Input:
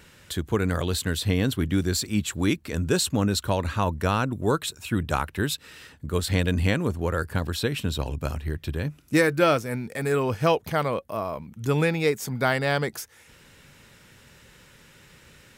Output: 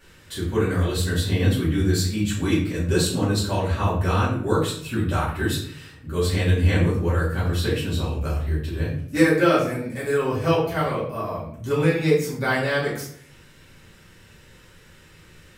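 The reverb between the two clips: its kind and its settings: shoebox room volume 86 m³, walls mixed, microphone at 2.4 m; gain -9 dB

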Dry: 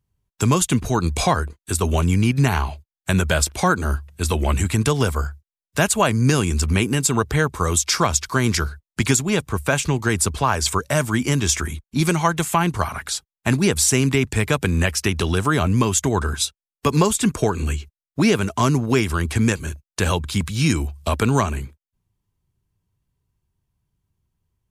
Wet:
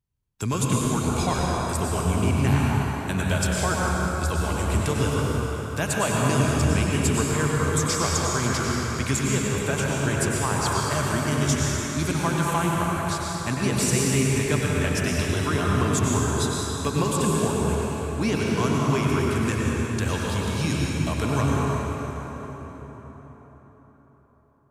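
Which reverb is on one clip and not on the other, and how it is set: plate-style reverb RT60 4.8 s, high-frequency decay 0.6×, pre-delay 85 ms, DRR -4 dB; gain -9 dB

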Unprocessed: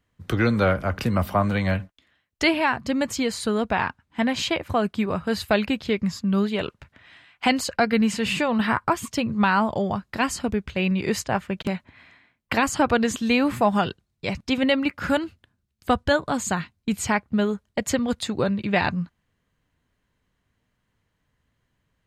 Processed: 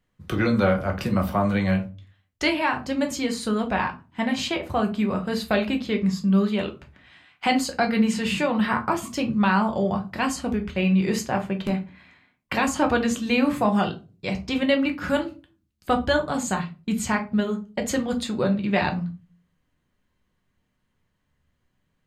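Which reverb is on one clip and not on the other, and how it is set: shoebox room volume 140 m³, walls furnished, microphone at 0.99 m; gain -3 dB

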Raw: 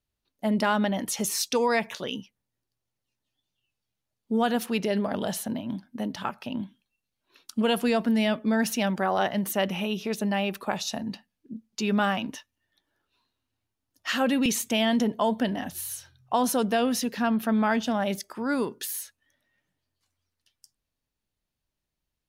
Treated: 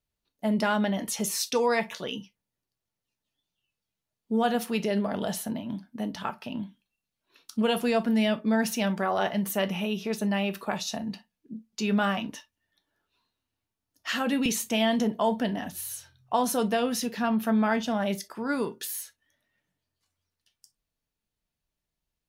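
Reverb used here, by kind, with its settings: non-linear reverb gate 80 ms falling, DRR 8 dB; gain -2 dB

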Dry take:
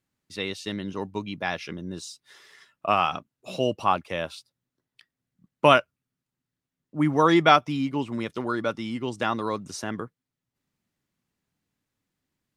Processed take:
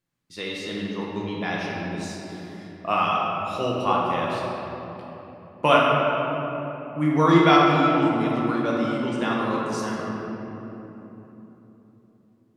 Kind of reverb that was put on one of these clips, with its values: shoebox room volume 220 m³, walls hard, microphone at 0.84 m; gain -3.5 dB

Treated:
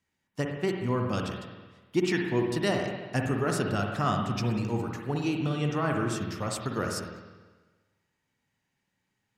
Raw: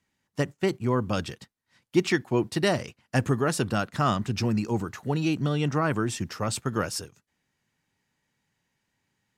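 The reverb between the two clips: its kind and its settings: spring tank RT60 1.3 s, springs 49/60 ms, chirp 55 ms, DRR 1.5 dB; gain -4.5 dB

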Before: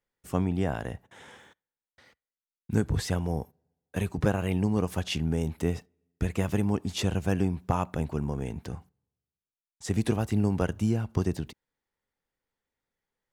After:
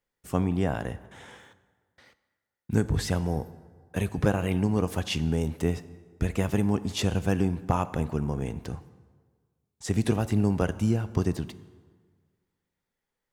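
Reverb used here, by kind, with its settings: plate-style reverb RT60 1.6 s, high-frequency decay 0.65×, DRR 14.5 dB; gain +1.5 dB

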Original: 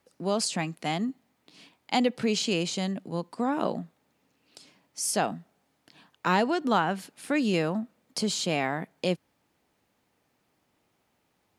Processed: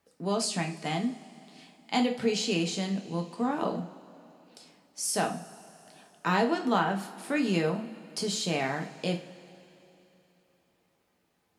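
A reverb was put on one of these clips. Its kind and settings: two-slope reverb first 0.35 s, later 3.3 s, from -21 dB, DRR 2 dB; gain -3.5 dB

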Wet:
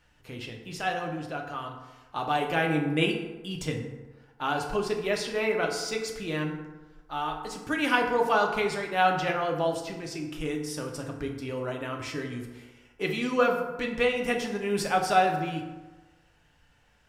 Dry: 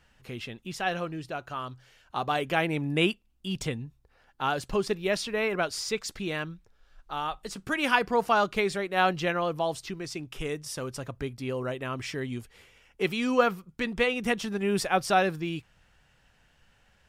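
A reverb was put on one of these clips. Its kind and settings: FDN reverb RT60 1.2 s, low-frequency decay 0.9×, high-frequency decay 0.5×, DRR 1 dB; gain -2.5 dB

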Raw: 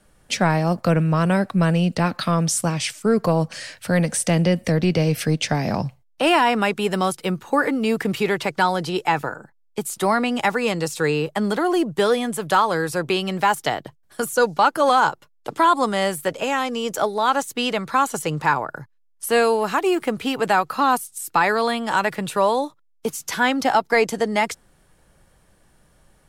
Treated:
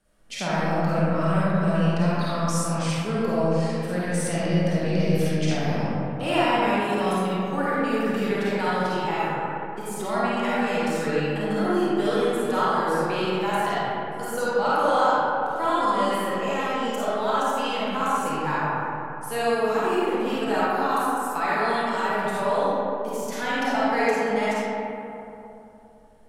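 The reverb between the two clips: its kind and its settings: digital reverb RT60 3 s, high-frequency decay 0.4×, pre-delay 10 ms, DRR -9.5 dB; gain -13.5 dB

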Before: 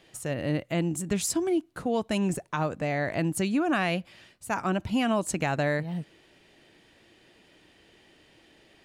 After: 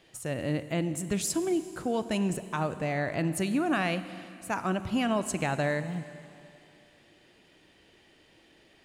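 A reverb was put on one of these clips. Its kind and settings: Schroeder reverb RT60 2.7 s, combs from 33 ms, DRR 12 dB; gain -2 dB

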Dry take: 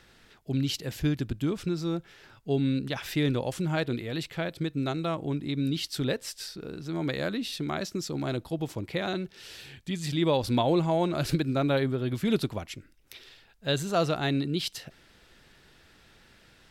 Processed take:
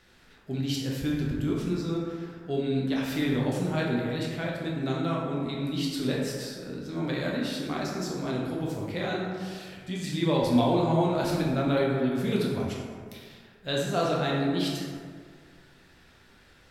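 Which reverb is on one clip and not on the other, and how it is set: plate-style reverb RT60 1.9 s, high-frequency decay 0.4×, DRR -4 dB; gain -4.5 dB

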